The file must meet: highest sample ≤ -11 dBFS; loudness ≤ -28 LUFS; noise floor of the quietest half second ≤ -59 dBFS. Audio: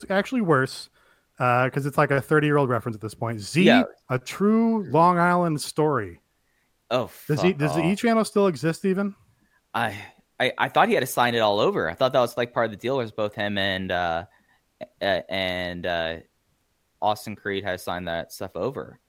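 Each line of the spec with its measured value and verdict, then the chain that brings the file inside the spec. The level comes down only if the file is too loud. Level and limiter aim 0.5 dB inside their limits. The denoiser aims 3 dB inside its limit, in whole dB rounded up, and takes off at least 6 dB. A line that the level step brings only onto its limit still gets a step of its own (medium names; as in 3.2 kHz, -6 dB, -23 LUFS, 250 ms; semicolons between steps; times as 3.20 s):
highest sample -4.5 dBFS: fail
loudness -23.5 LUFS: fail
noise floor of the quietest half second -69 dBFS: pass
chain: trim -5 dB; peak limiter -11.5 dBFS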